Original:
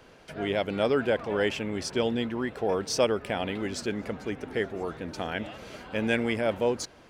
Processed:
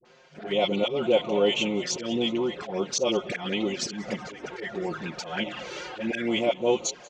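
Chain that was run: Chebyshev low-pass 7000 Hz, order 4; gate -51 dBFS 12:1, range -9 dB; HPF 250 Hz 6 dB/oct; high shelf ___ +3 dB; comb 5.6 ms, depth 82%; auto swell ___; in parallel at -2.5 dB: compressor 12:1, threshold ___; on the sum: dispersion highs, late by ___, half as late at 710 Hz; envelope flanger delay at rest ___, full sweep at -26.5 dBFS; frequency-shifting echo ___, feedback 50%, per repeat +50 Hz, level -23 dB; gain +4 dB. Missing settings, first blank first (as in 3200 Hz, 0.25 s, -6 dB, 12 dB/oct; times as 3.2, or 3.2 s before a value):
2500 Hz, 0.191 s, -37 dBFS, 52 ms, 8.7 ms, 0.187 s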